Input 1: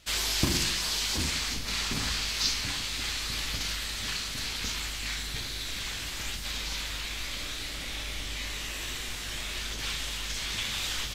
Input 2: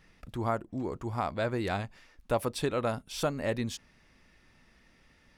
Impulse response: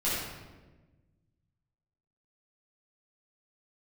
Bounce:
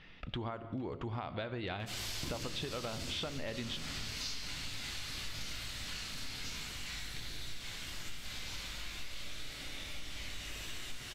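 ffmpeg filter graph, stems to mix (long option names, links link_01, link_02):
-filter_complex "[0:a]acompressor=mode=upward:threshold=-43dB:ratio=2.5,adelay=1800,volume=-14.5dB,asplit=2[link_01][link_02];[link_02]volume=-5dB[link_03];[1:a]acompressor=threshold=-31dB:ratio=6,lowpass=frequency=3300:width_type=q:width=2.9,volume=2.5dB,asplit=2[link_04][link_05];[link_05]volume=-21.5dB[link_06];[2:a]atrim=start_sample=2205[link_07];[link_03][link_06]amix=inputs=2:normalize=0[link_08];[link_08][link_07]afir=irnorm=-1:irlink=0[link_09];[link_01][link_04][link_09]amix=inputs=3:normalize=0,acompressor=threshold=-36dB:ratio=6"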